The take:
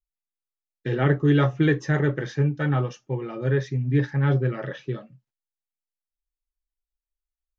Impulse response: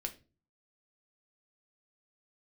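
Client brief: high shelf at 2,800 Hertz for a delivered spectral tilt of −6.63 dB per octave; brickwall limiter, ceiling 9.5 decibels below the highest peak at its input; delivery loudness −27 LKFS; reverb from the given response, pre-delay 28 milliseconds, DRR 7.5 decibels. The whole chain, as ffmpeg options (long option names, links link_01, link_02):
-filter_complex "[0:a]highshelf=frequency=2800:gain=3.5,alimiter=limit=-17.5dB:level=0:latency=1,asplit=2[link_01][link_02];[1:a]atrim=start_sample=2205,adelay=28[link_03];[link_02][link_03]afir=irnorm=-1:irlink=0,volume=-7dB[link_04];[link_01][link_04]amix=inputs=2:normalize=0"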